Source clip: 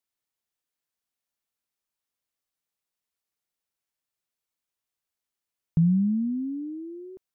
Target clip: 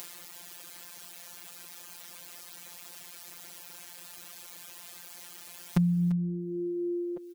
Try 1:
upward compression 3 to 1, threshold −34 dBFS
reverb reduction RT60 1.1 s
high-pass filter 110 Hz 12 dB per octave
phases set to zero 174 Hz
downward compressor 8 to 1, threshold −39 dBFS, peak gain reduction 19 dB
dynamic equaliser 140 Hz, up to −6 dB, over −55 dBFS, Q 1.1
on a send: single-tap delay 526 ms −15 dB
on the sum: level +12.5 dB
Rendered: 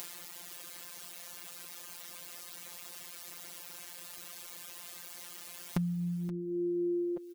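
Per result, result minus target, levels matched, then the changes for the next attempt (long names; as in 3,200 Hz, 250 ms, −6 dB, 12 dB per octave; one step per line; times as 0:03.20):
echo 183 ms late; downward compressor: peak gain reduction +8 dB
change: single-tap delay 343 ms −15 dB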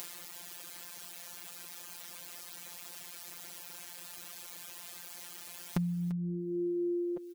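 downward compressor: peak gain reduction +8 dB
change: downward compressor 8 to 1, threshold −30 dBFS, peak gain reduction 11 dB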